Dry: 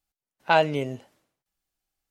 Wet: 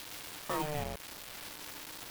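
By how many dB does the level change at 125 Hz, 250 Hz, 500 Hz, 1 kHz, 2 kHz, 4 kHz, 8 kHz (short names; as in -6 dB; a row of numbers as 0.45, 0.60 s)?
-9.0 dB, -10.0 dB, -15.0 dB, -13.5 dB, -14.5 dB, -7.0 dB, n/a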